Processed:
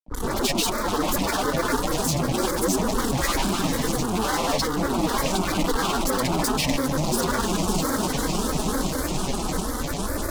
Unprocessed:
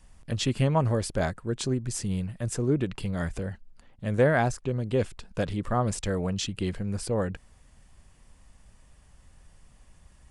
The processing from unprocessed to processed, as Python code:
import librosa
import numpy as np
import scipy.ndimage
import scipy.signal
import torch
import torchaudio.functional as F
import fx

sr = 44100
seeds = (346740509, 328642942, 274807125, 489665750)

y = fx.echo_diffused(x, sr, ms=704, feedback_pct=60, wet_db=-13.0)
y = fx.spec_box(y, sr, start_s=2.94, length_s=0.77, low_hz=1100.0, high_hz=2500.0, gain_db=11)
y = fx.tube_stage(y, sr, drive_db=29.0, bias=0.4)
y = fx.dispersion(y, sr, late='highs', ms=144.0, hz=560.0)
y = fx.fuzz(y, sr, gain_db=51.0, gate_db=-55.0)
y = fx.fixed_phaser(y, sr, hz=530.0, stages=6)
y = y + 0.65 * np.pad(y, (int(5.0 * sr / 1000.0), 0))[:len(y)]
y = fx.granulator(y, sr, seeds[0], grain_ms=100.0, per_s=20.0, spray_ms=100.0, spread_st=7)
y = fx.band_squash(y, sr, depth_pct=40)
y = F.gain(torch.from_numpy(y), -5.0).numpy()